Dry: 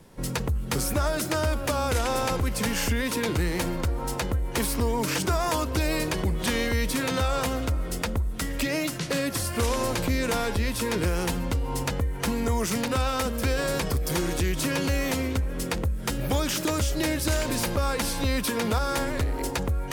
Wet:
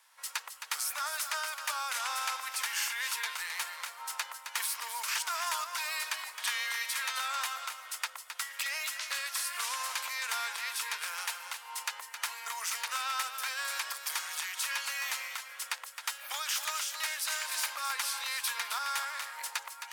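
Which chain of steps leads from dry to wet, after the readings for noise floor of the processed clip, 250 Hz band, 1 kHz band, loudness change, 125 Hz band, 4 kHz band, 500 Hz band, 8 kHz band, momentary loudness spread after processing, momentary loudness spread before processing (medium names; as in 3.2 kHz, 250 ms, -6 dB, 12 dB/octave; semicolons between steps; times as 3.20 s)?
-50 dBFS, under -40 dB, -5.5 dB, -7.0 dB, under -40 dB, -2.5 dB, -25.5 dB, -2.5 dB, 6 LU, 3 LU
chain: inverse Chebyshev high-pass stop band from 300 Hz, stop band 60 dB; delay 265 ms -8.5 dB; trim -3 dB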